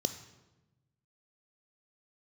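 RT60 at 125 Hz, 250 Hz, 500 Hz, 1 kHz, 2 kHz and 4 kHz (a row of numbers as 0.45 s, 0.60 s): 1.7 s, 1.4 s, 1.1 s, 0.95 s, 0.85 s, 0.80 s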